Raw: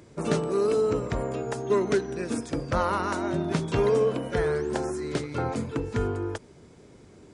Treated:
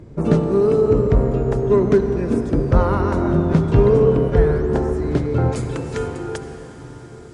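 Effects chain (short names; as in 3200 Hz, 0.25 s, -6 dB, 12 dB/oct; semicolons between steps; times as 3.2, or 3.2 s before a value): tilt -3.5 dB/oct, from 5.51 s +2 dB/oct; reverb RT60 6.2 s, pre-delay 58 ms, DRR 7 dB; gain +3 dB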